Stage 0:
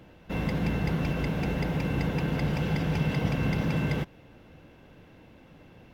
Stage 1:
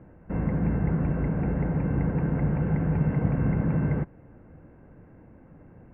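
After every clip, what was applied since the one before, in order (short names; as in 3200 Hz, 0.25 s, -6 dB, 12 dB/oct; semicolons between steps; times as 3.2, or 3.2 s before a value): inverse Chebyshev low-pass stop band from 3700 Hz, stop band 40 dB; low shelf 420 Hz +7 dB; gain -3 dB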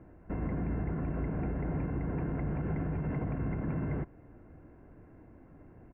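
comb 2.9 ms, depth 35%; limiter -22.5 dBFS, peak gain reduction 8.5 dB; gain -3.5 dB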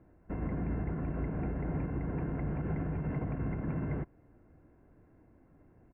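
upward expander 1.5:1, over -45 dBFS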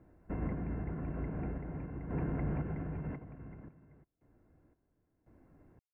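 random-step tremolo 1.9 Hz, depth 100%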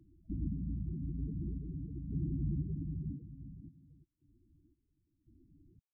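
loudest bins only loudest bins 8; gain +1 dB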